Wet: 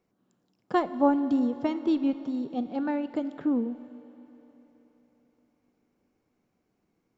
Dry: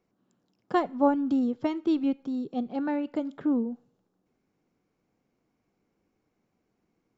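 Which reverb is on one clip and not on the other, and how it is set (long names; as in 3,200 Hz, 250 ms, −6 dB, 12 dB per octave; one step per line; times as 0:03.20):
four-comb reverb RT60 3.9 s, combs from 25 ms, DRR 13.5 dB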